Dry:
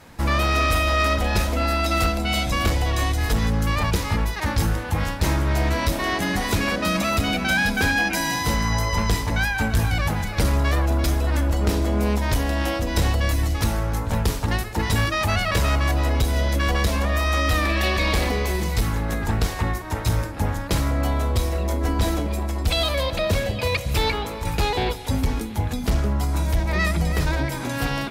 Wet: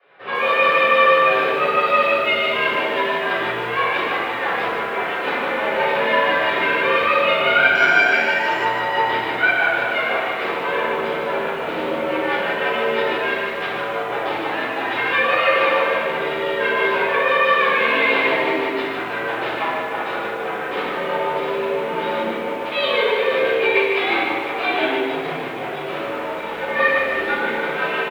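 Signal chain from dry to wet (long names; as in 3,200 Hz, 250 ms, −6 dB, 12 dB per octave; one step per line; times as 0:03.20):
automatic gain control gain up to 4 dB
in parallel at −5.5 dB: bit reduction 4 bits
on the sum: rotating-speaker cabinet horn 6 Hz
soft clipping −4.5 dBFS, distortion −26 dB
echo with shifted repeats 114 ms, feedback 43%, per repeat +98 Hz, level −16 dB
rectangular room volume 480 cubic metres, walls mixed, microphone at 6.1 metres
0:07.75–0:08.65: bad sample-rate conversion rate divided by 6×, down filtered, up zero stuff
single-sideband voice off tune −100 Hz 490–3,300 Hz
feedback echo at a low word length 150 ms, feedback 35%, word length 6 bits, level −6 dB
level −10.5 dB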